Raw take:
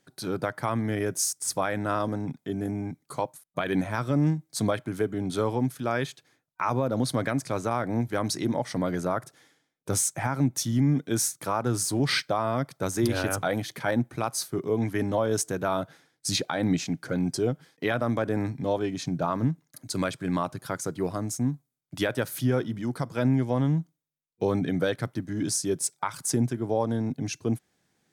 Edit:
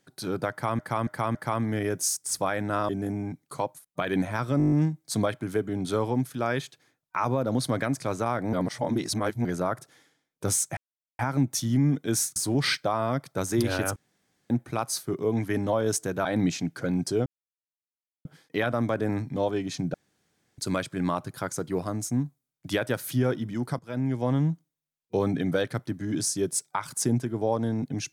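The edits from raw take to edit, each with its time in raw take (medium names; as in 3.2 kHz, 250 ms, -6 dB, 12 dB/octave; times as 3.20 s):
0.51–0.79 s: loop, 4 plays
2.05–2.48 s: delete
4.17 s: stutter 0.02 s, 8 plays
7.98–8.90 s: reverse
10.22 s: insert silence 0.42 s
11.39–11.81 s: delete
13.41–13.95 s: room tone
15.70–16.52 s: delete
17.53 s: insert silence 0.99 s
19.22–19.86 s: room tone
23.07–23.57 s: fade in, from -15 dB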